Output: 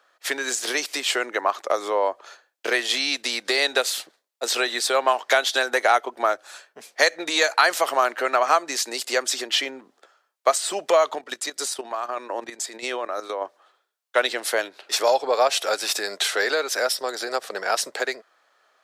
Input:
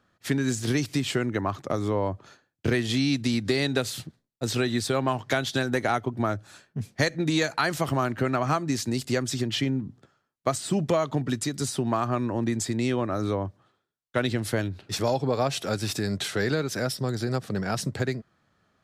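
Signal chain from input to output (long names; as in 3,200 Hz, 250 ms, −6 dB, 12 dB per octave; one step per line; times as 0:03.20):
high-pass filter 500 Hz 24 dB per octave
0:11.14–0:13.42: output level in coarse steps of 12 dB
level +8 dB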